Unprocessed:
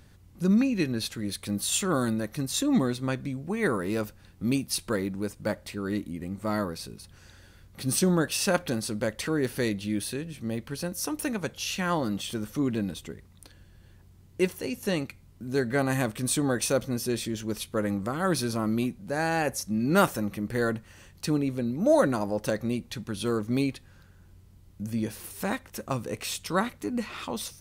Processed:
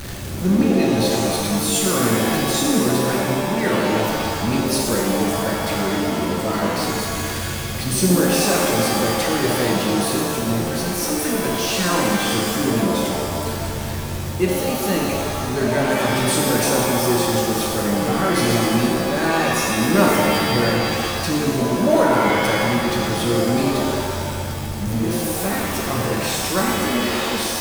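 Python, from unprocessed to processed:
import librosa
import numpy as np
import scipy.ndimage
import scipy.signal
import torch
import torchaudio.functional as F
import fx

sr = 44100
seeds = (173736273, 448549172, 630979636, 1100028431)

y = x + 0.5 * 10.0 ** (-28.0 / 20.0) * np.sign(x)
y = fx.rev_shimmer(y, sr, seeds[0], rt60_s=1.8, semitones=7, shimmer_db=-2, drr_db=-2.0)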